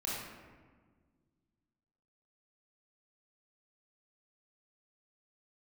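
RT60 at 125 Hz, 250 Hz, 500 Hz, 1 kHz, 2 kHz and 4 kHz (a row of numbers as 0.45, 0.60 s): 2.6, 2.4, 1.7, 1.4, 1.2, 0.80 s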